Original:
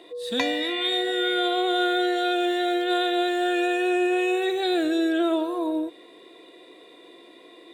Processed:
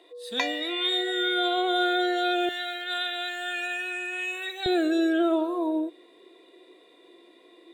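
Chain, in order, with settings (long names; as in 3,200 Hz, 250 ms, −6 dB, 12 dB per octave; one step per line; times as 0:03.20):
high-pass filter 340 Hz 12 dB per octave, from 0:02.49 1,100 Hz, from 0:04.66 180 Hz
noise reduction from a noise print of the clip's start 7 dB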